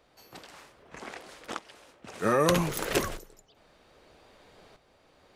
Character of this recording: tremolo saw up 0.63 Hz, depth 70%

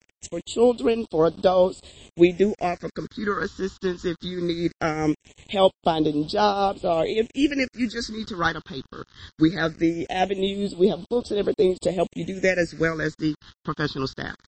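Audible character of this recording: tremolo triangle 5 Hz, depth 65%; a quantiser's noise floor 8-bit, dither none; phasing stages 6, 0.2 Hz, lowest notch 590–1900 Hz; MP3

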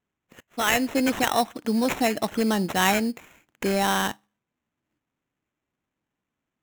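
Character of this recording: aliases and images of a low sample rate 4.7 kHz, jitter 0%

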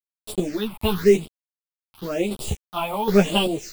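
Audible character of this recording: a quantiser's noise floor 6-bit, dither none; phasing stages 6, 0.95 Hz, lowest notch 420–1800 Hz; chopped level 1.3 Hz, depth 60%, duty 50%; a shimmering, thickened sound

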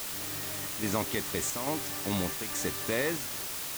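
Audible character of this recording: chopped level 1.2 Hz, depth 60%, duty 80%; a quantiser's noise floor 6-bit, dither triangular

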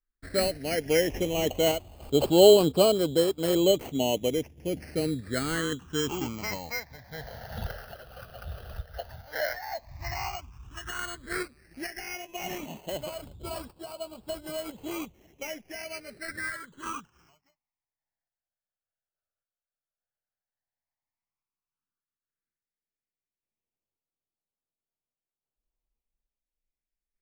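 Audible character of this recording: aliases and images of a low sample rate 3.6 kHz, jitter 0%; phasing stages 8, 0.09 Hz, lowest notch 290–1900 Hz; random-step tremolo

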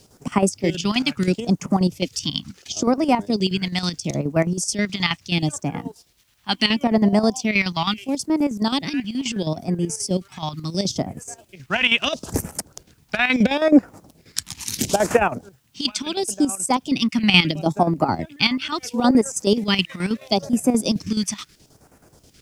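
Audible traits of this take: phasing stages 2, 0.74 Hz, lowest notch 440–3600 Hz; chopped level 9.4 Hz, depth 65%, duty 60%; a quantiser's noise floor 12-bit, dither triangular

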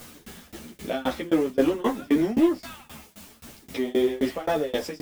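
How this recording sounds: a quantiser's noise floor 8-bit, dither triangular; tremolo saw down 3.8 Hz, depth 100%; a shimmering, thickened sound

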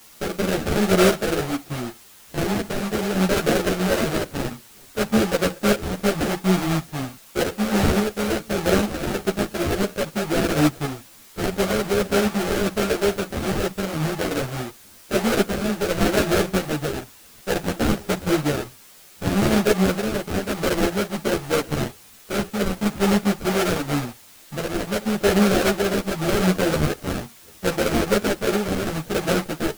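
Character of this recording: aliases and images of a low sample rate 1 kHz, jitter 20%; random-step tremolo; a quantiser's noise floor 8-bit, dither triangular; a shimmering, thickened sound

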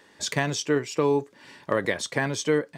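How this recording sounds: noise floor -57 dBFS; spectral tilt -4.0 dB/octave

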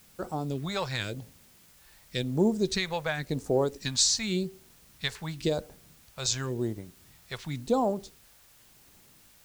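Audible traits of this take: phasing stages 2, 0.92 Hz, lowest notch 290–2800 Hz; a quantiser's noise floor 10-bit, dither triangular

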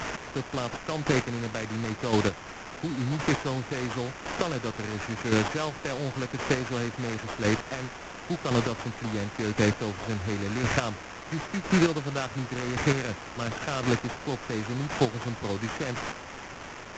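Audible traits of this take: a quantiser's noise floor 6-bit, dither triangular; chopped level 0.94 Hz, depth 60%, duty 15%; aliases and images of a low sample rate 4.1 kHz, jitter 20%; µ-law

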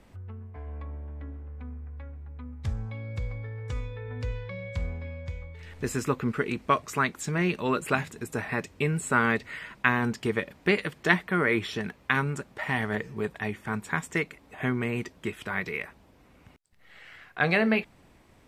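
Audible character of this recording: noise floor -58 dBFS; spectral tilt -4.5 dB/octave

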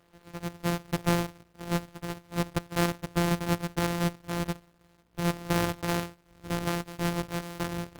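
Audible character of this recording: a buzz of ramps at a fixed pitch in blocks of 256 samples; random-step tremolo; a quantiser's noise floor 12-bit, dither none; Opus

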